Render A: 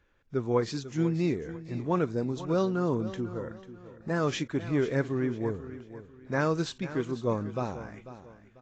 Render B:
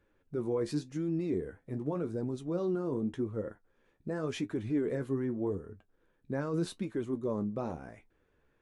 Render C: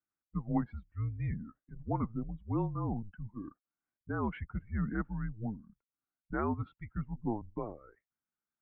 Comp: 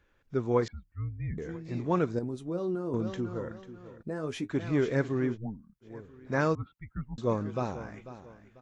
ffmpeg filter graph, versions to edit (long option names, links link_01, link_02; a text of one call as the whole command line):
ffmpeg -i take0.wav -i take1.wav -i take2.wav -filter_complex "[2:a]asplit=3[link_01][link_02][link_03];[1:a]asplit=2[link_04][link_05];[0:a]asplit=6[link_06][link_07][link_08][link_09][link_10][link_11];[link_06]atrim=end=0.682[link_12];[link_01]atrim=start=0.678:end=1.382[link_13];[link_07]atrim=start=1.378:end=2.192[link_14];[link_04]atrim=start=2.188:end=2.942[link_15];[link_08]atrim=start=2.938:end=4.03[link_16];[link_05]atrim=start=4.01:end=4.5[link_17];[link_09]atrim=start=4.48:end=5.38[link_18];[link_02]atrim=start=5.32:end=5.87[link_19];[link_10]atrim=start=5.81:end=6.552[link_20];[link_03]atrim=start=6.548:end=7.182[link_21];[link_11]atrim=start=7.178[link_22];[link_12][link_13]acrossfade=duration=0.004:curve1=hsin:curve2=hsin[link_23];[link_23][link_14]acrossfade=duration=0.004:curve1=hsin:curve2=hsin[link_24];[link_24][link_15]acrossfade=duration=0.004:curve1=hsin:curve2=hsin[link_25];[link_25][link_16]acrossfade=duration=0.004:curve1=hsin:curve2=hsin[link_26];[link_26][link_17]acrossfade=duration=0.02:curve1=tri:curve2=tri[link_27];[link_27][link_18]acrossfade=duration=0.02:curve1=tri:curve2=tri[link_28];[link_28][link_19]acrossfade=duration=0.06:curve1=tri:curve2=tri[link_29];[link_29][link_20]acrossfade=duration=0.06:curve1=tri:curve2=tri[link_30];[link_30][link_21]acrossfade=duration=0.004:curve1=hsin:curve2=hsin[link_31];[link_31][link_22]acrossfade=duration=0.004:curve1=hsin:curve2=hsin" out.wav